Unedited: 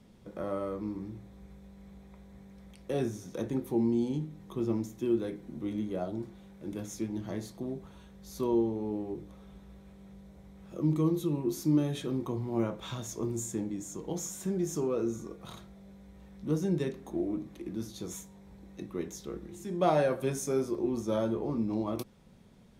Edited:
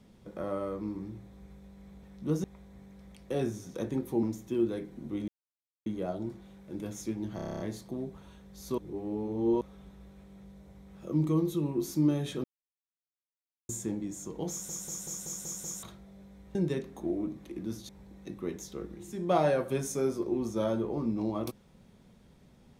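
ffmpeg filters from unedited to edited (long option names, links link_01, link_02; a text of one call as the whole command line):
ffmpeg -i in.wav -filter_complex "[0:a]asplit=26[link_01][link_02][link_03][link_04][link_05][link_06][link_07][link_08][link_09][link_10][link_11][link_12][link_13][link_14][link_15][link_16][link_17][link_18][link_19][link_20][link_21][link_22][link_23][link_24][link_25][link_26];[link_01]atrim=end=2.032[link_27];[link_02]atrim=start=16.238:end=16.652[link_28];[link_03]atrim=start=2.028:end=3.822[link_29];[link_04]atrim=start=4.738:end=5.79,asetpts=PTS-STARTPTS,afade=type=out:start_time=1.048:duration=0.004:curve=hsin,apad=pad_dur=0.58[link_30];[link_05]atrim=start=5.79:end=7.322,asetpts=PTS-STARTPTS,afade=type=in:duration=0.004:curve=hsin[link_31];[link_06]atrim=start=7.288:end=7.322[link_32];[link_07]atrim=start=7.288:end=7.322[link_33];[link_08]atrim=start=7.288:end=7.322[link_34];[link_09]atrim=start=7.288:end=7.322[link_35];[link_10]atrim=start=7.288:end=7.322[link_36];[link_11]atrim=start=7.288:end=7.322[link_37];[link_12]atrim=start=7.288:end=7.322[link_38];[link_13]atrim=start=7.288:end=8.472[link_39];[link_14]atrim=start=8.468:end=9.302,asetpts=PTS-STARTPTS,areverse[link_40];[link_15]atrim=start=9.298:end=12.13,asetpts=PTS-STARTPTS,afade=type=out:start_time=2.828:duration=0.004:curve=hsin[link_41];[link_16]atrim=start=12.13:end=13.38,asetpts=PTS-STARTPTS,volume=0[link_42];[link_17]atrim=start=13.38:end=14.382,asetpts=PTS-STARTPTS,afade=type=in:duration=0.004:curve=hsin[link_43];[link_18]atrim=start=14.188:end=14.382[link_44];[link_19]atrim=start=14.188:end=14.382[link_45];[link_20]atrim=start=14.188:end=14.382[link_46];[link_21]atrim=start=14.188:end=14.382[link_47];[link_22]atrim=start=14.188:end=14.382[link_48];[link_23]atrim=start=14.188:end=14.382[link_49];[link_24]atrim=start=15.518:end=16.242[link_50];[link_25]atrim=start=16.648:end=17.992[link_51];[link_26]atrim=start=18.408[link_52];[link_27][link_28]acrossfade=duration=0.004:curve1=hsin:curve2=hsin[link_53];[link_53][link_29]acrossfade=duration=0.004:curve1=hsin:curve2=hsin[link_54];[link_30][link_31]concat=n=2:v=0:a=1[link_55];[link_54][link_55]acrossfade=duration=0.004:curve1=hsin:curve2=hsin[link_56];[link_56][link_32]acrossfade=duration=0.004:curve1=hsin:curve2=hsin[link_57];[link_57][link_33]acrossfade=duration=0.004:curve1=hsin:curve2=hsin[link_58];[link_58][link_34]acrossfade=duration=0.004:curve1=hsin:curve2=hsin[link_59];[link_59][link_35]acrossfade=duration=0.004:curve1=hsin:curve2=hsin[link_60];[link_60][link_36]acrossfade=duration=0.004:curve1=hsin:curve2=hsin[link_61];[link_61][link_37]acrossfade=duration=0.004:curve1=hsin:curve2=hsin[link_62];[link_62][link_38]acrossfade=duration=0.004:curve1=hsin:curve2=hsin[link_63];[link_63][link_39]acrossfade=duration=0.004:curve1=hsin:curve2=hsin[link_64];[link_64][link_40]acrossfade=duration=0.004:curve1=hsin:curve2=hsin[link_65];[link_41][link_42][link_43]concat=n=3:v=0:a=1[link_66];[link_65][link_66]acrossfade=duration=0.004:curve1=hsin:curve2=hsin[link_67];[link_67][link_44]acrossfade=duration=0.004:curve1=hsin:curve2=hsin[link_68];[link_68][link_45]acrossfade=duration=0.004:curve1=hsin:curve2=hsin[link_69];[link_69][link_46]acrossfade=duration=0.004:curve1=hsin:curve2=hsin[link_70];[link_70][link_47]acrossfade=duration=0.004:curve1=hsin:curve2=hsin[link_71];[link_71][link_48]acrossfade=duration=0.004:curve1=hsin:curve2=hsin[link_72];[link_72][link_49]acrossfade=duration=0.004:curve1=hsin:curve2=hsin[link_73];[link_73][link_50]acrossfade=duration=0.004:curve1=hsin:curve2=hsin[link_74];[link_74][link_51]acrossfade=duration=0.004:curve1=hsin:curve2=hsin[link_75];[link_75][link_52]acrossfade=duration=0.004:curve1=hsin:curve2=hsin" out.wav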